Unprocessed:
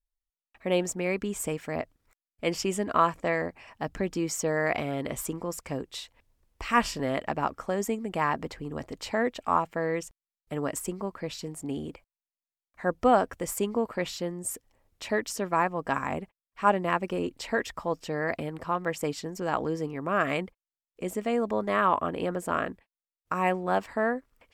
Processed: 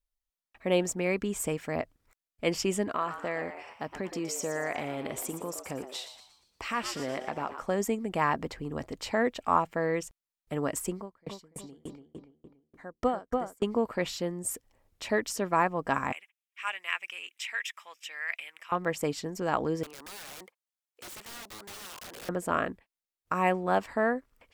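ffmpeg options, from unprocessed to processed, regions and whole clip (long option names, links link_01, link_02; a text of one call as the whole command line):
ffmpeg -i in.wav -filter_complex "[0:a]asettb=1/sr,asplit=3[link_01][link_02][link_03];[link_01]atrim=end=2.884[link_04];[link_02]atrim=start=2.88:end=7.62,asetpts=PTS-STARTPTS,afade=type=in:duration=0.004:curve=qsin,afade=type=out:start_time=4.736:duration=0.004:curve=qsin,highpass=frequency=190:poles=1,acompressor=threshold=-32dB:ratio=2:attack=3.2:release=140:knee=1:detection=peak,asplit=6[link_05][link_06][link_07][link_08][link_09][link_10];[link_06]adelay=117,afreqshift=120,volume=-10dB[link_11];[link_07]adelay=234,afreqshift=240,volume=-17.1dB[link_12];[link_08]adelay=351,afreqshift=360,volume=-24.3dB[link_13];[link_09]adelay=468,afreqshift=480,volume=-31.4dB[link_14];[link_10]adelay=585,afreqshift=600,volume=-38.5dB[link_15];[link_05][link_11][link_12][link_13][link_14][link_15]amix=inputs=6:normalize=0,atrim=end_sample=209034[link_16];[link_03]atrim=start=7.616[link_17];[link_04][link_16]acrossfade=duration=0.004:curve1=hsin:curve2=qsin[link_18];[link_18][link_17]acrossfade=duration=0.004:curve1=qsin:curve2=hsin,asettb=1/sr,asplit=3[link_19][link_20][link_21];[link_19]atrim=end=10.974[link_22];[link_20]atrim=start=10.97:end=13.63,asetpts=PTS-STARTPTS,afade=type=in:duration=0.004:curve=qsin,afade=type=out:start_time=2.656:duration=0.004:curve=qsin,bandreject=frequency=2600:width=8.2,asplit=2[link_23][link_24];[link_24]adelay=287,lowpass=frequency=2500:poles=1,volume=-3dB,asplit=2[link_25][link_26];[link_26]adelay=287,lowpass=frequency=2500:poles=1,volume=0.42,asplit=2[link_27][link_28];[link_28]adelay=287,lowpass=frequency=2500:poles=1,volume=0.42,asplit=2[link_29][link_30];[link_30]adelay=287,lowpass=frequency=2500:poles=1,volume=0.42,asplit=2[link_31][link_32];[link_32]adelay=287,lowpass=frequency=2500:poles=1,volume=0.42[link_33];[link_23][link_25][link_27][link_29][link_31][link_33]amix=inputs=6:normalize=0,atrim=end_sample=117306,aeval=exprs='val(0)*pow(10,-34*if(lt(mod(3.4*n/s,1),2*abs(3.4)/1000),1-mod(3.4*n/s,1)/(2*abs(3.4)/1000),(mod(3.4*n/s,1)-2*abs(3.4)/1000)/(1-2*abs(3.4)/1000))/20)':channel_layout=same[link_34];[link_21]atrim=start=13.626[link_35];[link_22][link_34]acrossfade=duration=0.004:curve1=hsin:curve2=qsin[link_36];[link_36][link_35]acrossfade=duration=0.004:curve1=qsin:curve2=hsin,asettb=1/sr,asplit=3[link_37][link_38][link_39];[link_37]atrim=end=16.124[link_40];[link_38]atrim=start=16.12:end=18.72,asetpts=PTS-STARTPTS,afade=type=in:duration=0.004:curve=qsin,afade=type=out:start_time=2.596:duration=0.004:curve=qsin,highpass=frequency=2400:width_type=q:width=2.3,equalizer=frequency=4400:width_type=o:width=0.25:gain=-13.5[link_41];[link_39]atrim=start=18.716[link_42];[link_40][link_41]acrossfade=duration=0.004:curve1=hsin:curve2=qsin[link_43];[link_43][link_42]acrossfade=duration=0.004:curve1=qsin:curve2=hsin,asettb=1/sr,asplit=3[link_44][link_45][link_46];[link_44]atrim=end=19.834[link_47];[link_45]atrim=start=19.83:end=22.29,asetpts=PTS-STARTPTS,afade=type=in:duration=0.004:curve=qsin,afade=type=out:start_time=2.456:duration=0.004:curve=qsin,highpass=660,acompressor=threshold=-32dB:ratio=8:attack=3.2:release=140:knee=1:detection=peak,aeval=exprs='(mod(89.1*val(0)+1,2)-1)/89.1':channel_layout=same[link_48];[link_46]atrim=start=22.286[link_49];[link_47][link_48]acrossfade=duration=0.004:curve1=hsin:curve2=qsin[link_50];[link_50][link_49]acrossfade=duration=0.004:curve1=qsin:curve2=hsin" out.wav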